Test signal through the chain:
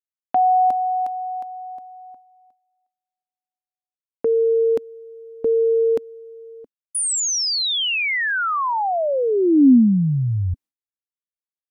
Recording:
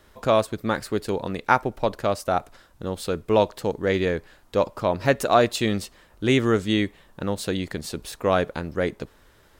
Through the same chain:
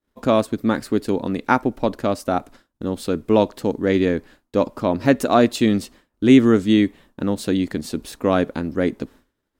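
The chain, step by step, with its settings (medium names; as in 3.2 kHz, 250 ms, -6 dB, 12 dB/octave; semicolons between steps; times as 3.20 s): peaking EQ 260 Hz +12 dB 0.8 oct; expander -39 dBFS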